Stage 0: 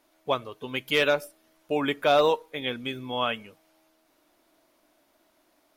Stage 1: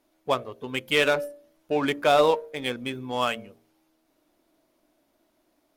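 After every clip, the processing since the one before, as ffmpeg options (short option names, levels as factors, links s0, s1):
-filter_complex "[0:a]bandreject=f=57.84:t=h:w=4,bandreject=f=115.68:t=h:w=4,bandreject=f=173.52:t=h:w=4,bandreject=f=231.36:t=h:w=4,bandreject=f=289.2:t=h:w=4,bandreject=f=347.04:t=h:w=4,bandreject=f=404.88:t=h:w=4,bandreject=f=462.72:t=h:w=4,bandreject=f=520.56:t=h:w=4,bandreject=f=578.4:t=h:w=4,bandreject=f=636.24:t=h:w=4,bandreject=f=694.08:t=h:w=4,asplit=2[s0][s1];[s1]adynamicsmooth=sensitivity=6.5:basefreq=690,volume=1.26[s2];[s0][s2]amix=inputs=2:normalize=0,volume=0.562"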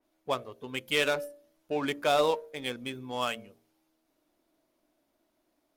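-af "adynamicequalizer=threshold=0.0178:dfrequency=3400:dqfactor=0.7:tfrequency=3400:tqfactor=0.7:attack=5:release=100:ratio=0.375:range=2.5:mode=boostabove:tftype=highshelf,volume=0.501"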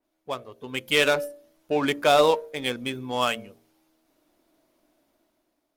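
-af "dynaudnorm=f=150:g=9:m=2.82,volume=0.794"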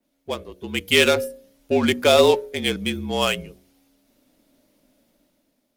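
-af "equalizer=f=1100:w=1:g=-7.5,afreqshift=-43,volume=2.11"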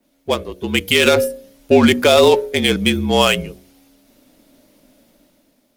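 -af "alimiter=level_in=3.35:limit=0.891:release=50:level=0:latency=1,volume=0.891"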